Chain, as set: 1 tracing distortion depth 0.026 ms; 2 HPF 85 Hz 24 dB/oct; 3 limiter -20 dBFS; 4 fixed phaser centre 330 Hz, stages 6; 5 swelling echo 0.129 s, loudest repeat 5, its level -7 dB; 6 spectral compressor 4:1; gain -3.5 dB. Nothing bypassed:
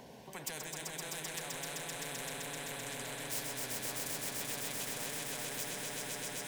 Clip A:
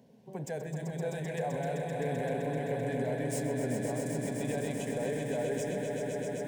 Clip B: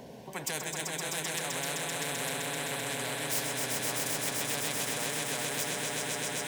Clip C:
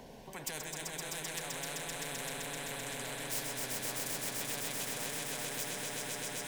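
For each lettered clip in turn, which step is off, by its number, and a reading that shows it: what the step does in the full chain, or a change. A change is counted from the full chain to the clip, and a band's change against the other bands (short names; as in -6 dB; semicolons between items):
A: 6, 4 kHz band -19.0 dB; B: 3, mean gain reduction 3.0 dB; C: 2, loudness change +1.5 LU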